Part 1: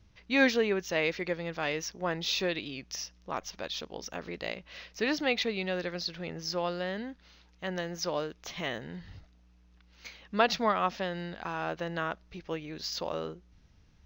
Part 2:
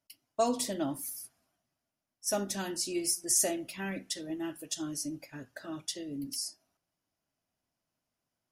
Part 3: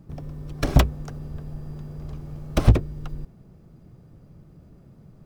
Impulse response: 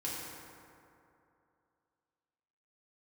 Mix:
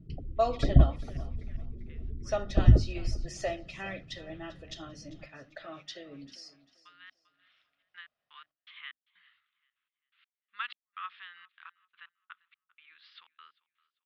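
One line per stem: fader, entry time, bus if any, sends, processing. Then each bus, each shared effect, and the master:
-6.5 dB, 0.20 s, no send, echo send -23 dB, elliptic band-pass 1.2–3.5 kHz, stop band 40 dB; trance gate "xxx.x..x..xx..x" 124 bpm -60 dB; auto duck -17 dB, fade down 0.50 s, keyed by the second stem
+0.5 dB, 0.00 s, no send, echo send -18 dB, low-pass 4 kHz 24 dB/octave; bass shelf 250 Hz -10.5 dB; comb 1.6 ms, depth 50%
-6.5 dB, 0.00 s, no send, echo send -19.5 dB, tilt EQ -1.5 dB/octave; spectral gate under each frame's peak -25 dB strong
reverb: none
echo: feedback delay 395 ms, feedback 28%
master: hum notches 50/100/150/200/250/300 Hz

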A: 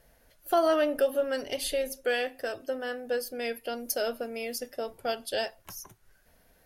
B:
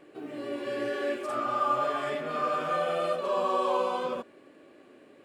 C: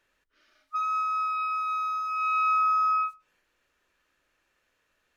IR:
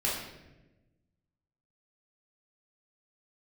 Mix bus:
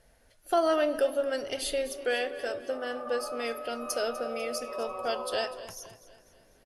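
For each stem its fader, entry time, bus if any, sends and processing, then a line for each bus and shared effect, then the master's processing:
-0.5 dB, 0.00 s, send -23.5 dB, echo send -15.5 dB, elliptic low-pass 11 kHz, stop band 50 dB
-8.0 dB, 1.45 s, no send, echo send -18 dB, hum 50 Hz, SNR 16 dB; band-pass filter 630 Hz, Q 1.5
-12.0 dB, 2.45 s, no send, no echo send, compression, threshold -32 dBFS, peak gain reduction 9.5 dB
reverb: on, RT60 1.1 s, pre-delay 3 ms
echo: feedback delay 248 ms, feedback 49%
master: none

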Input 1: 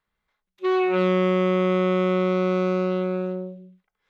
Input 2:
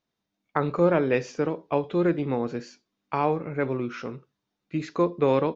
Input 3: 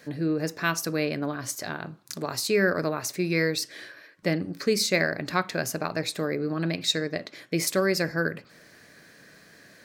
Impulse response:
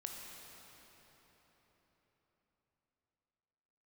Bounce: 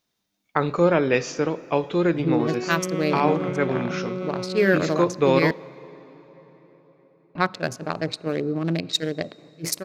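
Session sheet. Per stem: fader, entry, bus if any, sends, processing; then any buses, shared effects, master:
-6.5 dB, 1.75 s, no send, rotary cabinet horn 6.3 Hz
+1.0 dB, 0.00 s, send -13 dB, treble shelf 3 kHz +10.5 dB
+3.0 dB, 2.05 s, muted 5.51–7.35 s, send -17.5 dB, local Wiener filter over 25 samples; level-controlled noise filter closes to 710 Hz, open at -23.5 dBFS; attacks held to a fixed rise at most 430 dB/s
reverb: on, RT60 4.5 s, pre-delay 16 ms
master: none

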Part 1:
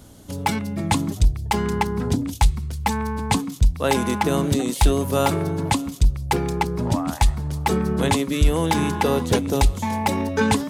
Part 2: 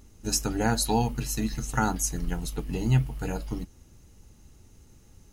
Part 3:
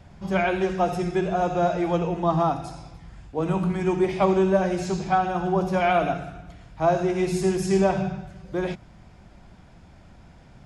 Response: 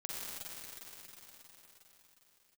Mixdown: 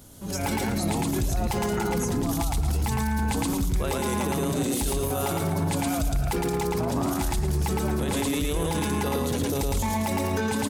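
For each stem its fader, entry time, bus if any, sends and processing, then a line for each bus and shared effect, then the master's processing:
-3.5 dB, 0.00 s, bus A, no send, echo send -6 dB, treble shelf 7.7 kHz +10 dB; peak limiter -15 dBFS, peak gain reduction 9 dB
-12.0 dB, 0.00 s, no bus, no send, no echo send, none
-1.5 dB, 0.00 s, bus A, no send, no echo send, gate with hold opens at -36 dBFS; compression, threshold -31 dBFS, peak gain reduction 15 dB
bus A: 0.0 dB, random-step tremolo; compression, threshold -28 dBFS, peak gain reduction 7 dB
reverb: none
echo: feedback delay 111 ms, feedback 30%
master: level rider gain up to 11 dB; peak limiter -18 dBFS, peak gain reduction 11 dB

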